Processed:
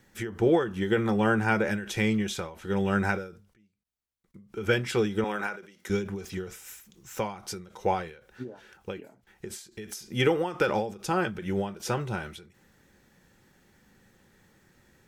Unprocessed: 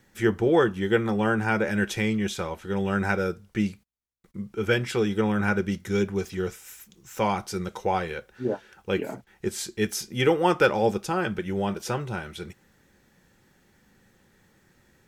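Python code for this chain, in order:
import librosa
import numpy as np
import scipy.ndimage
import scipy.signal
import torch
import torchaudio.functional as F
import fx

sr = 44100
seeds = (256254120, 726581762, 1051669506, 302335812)

y = fx.highpass(x, sr, hz=440.0, slope=12, at=(5.24, 5.9))
y = fx.end_taper(y, sr, db_per_s=110.0)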